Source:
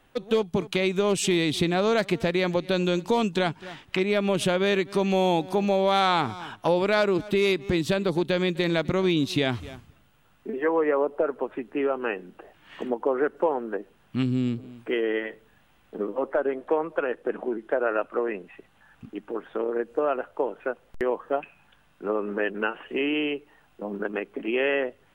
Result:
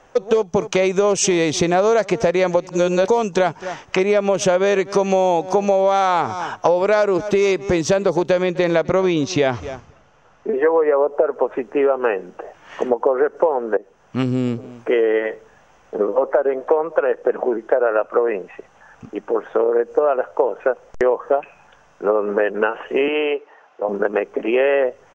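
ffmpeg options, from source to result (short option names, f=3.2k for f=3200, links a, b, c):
-filter_complex "[0:a]asettb=1/sr,asplit=3[a][b][c];[a]atrim=end=8.384[d];[b]atrim=start=8.38:end=10.71,asetpts=PTS-STARTPTS,afade=t=in:d=0.004:c=qsin,afade=t=out:st=2.326:d=0.004:c=qsin,lowpass=5.4k[e];[c]atrim=start=10.706[f];[d][e]acrossfade=d=0.004:c1=hsin:c2=qsin[g];[g][f]acrossfade=d=0.004:c1=qsin:c2=hsin,asettb=1/sr,asplit=3[h][i][j];[h]atrim=end=23.084[k];[i]atrim=start=23.08:end=23.89,asetpts=PTS-STARTPTS,afade=t=in:d=0.004:c=qsin,afade=t=out:st=0.806:d=0.004:c=qsin,highpass=410,lowpass=3.9k[l];[j]atrim=start=23.886[m];[k][l]acrossfade=d=0.004:c1=hsin:c2=qsin[n];[n][m]acrossfade=d=0.004:c1=qsin:c2=hsin,asplit=4[o][p][q][r];[o]atrim=end=2.672[s];[p]atrim=start=2.668:end=3.082,asetpts=PTS-STARTPTS,areverse[t];[q]atrim=start=3.078:end=13.77,asetpts=PTS-STARTPTS,afade=t=out:st=10.688:d=0.004:c=hsin:silence=0.237137[u];[r]atrim=start=13.77,asetpts=PTS-STARTPTS,afade=t=in:d=0.44:silence=0.237137[v];[s][t]acrossfade=d=0.004:c1=hsin:c2=hsin[w];[u][v]concat=n=2:v=0:a=1[x];[w][x]acrossfade=d=0.004:c1=hsin:c2=hsin,firequalizer=gain_entry='entry(290,0);entry(480,11);entry(1700,4);entry(3900,-4);entry(6000,14);entry(10000,-14)':delay=0.05:min_phase=1,acompressor=threshold=-18dB:ratio=6,volume=5dB"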